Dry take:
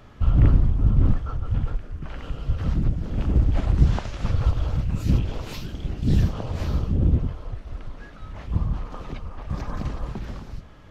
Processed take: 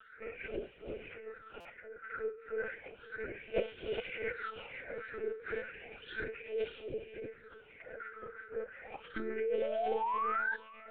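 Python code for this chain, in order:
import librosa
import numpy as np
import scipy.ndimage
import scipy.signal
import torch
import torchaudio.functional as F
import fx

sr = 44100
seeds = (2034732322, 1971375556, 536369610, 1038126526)

p1 = fx.vowel_filter(x, sr, vowel='e')
p2 = fx.formant_shift(p1, sr, semitones=-3)
p3 = fx.filter_lfo_highpass(p2, sr, shape='sine', hz=3.0, low_hz=490.0, high_hz=1800.0, q=1.3)
p4 = fx.phaser_stages(p3, sr, stages=6, low_hz=190.0, high_hz=1600.0, hz=0.33, feedback_pct=45)
p5 = fx.spec_paint(p4, sr, seeds[0], shape='rise', start_s=9.16, length_s=1.4, low_hz=310.0, high_hz=1700.0, level_db=-49.0)
p6 = p5 + fx.echo_feedback(p5, sr, ms=497, feedback_pct=28, wet_db=-21, dry=0)
p7 = fx.lpc_monotone(p6, sr, seeds[1], pitch_hz=220.0, order=16)
p8 = fx.buffer_glitch(p7, sr, at_s=(1.6,), block=256, repeats=8)
y = p8 * 10.0 ** (15.5 / 20.0)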